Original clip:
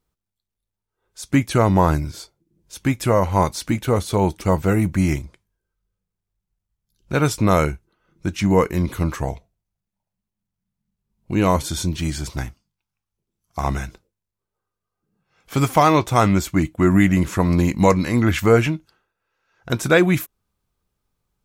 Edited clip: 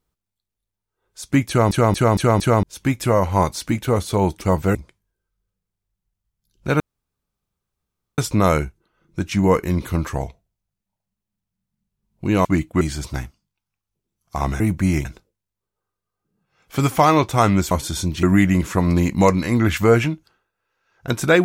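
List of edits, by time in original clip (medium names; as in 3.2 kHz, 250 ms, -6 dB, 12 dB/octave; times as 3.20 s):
1.48 s: stutter in place 0.23 s, 5 plays
4.75–5.20 s: move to 13.83 s
7.25 s: insert room tone 1.38 s
11.52–12.04 s: swap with 16.49–16.85 s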